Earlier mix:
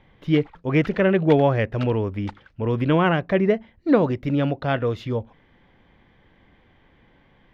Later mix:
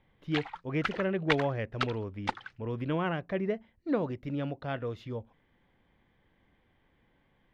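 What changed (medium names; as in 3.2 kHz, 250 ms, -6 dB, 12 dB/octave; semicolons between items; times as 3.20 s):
speech -12.0 dB; background +7.0 dB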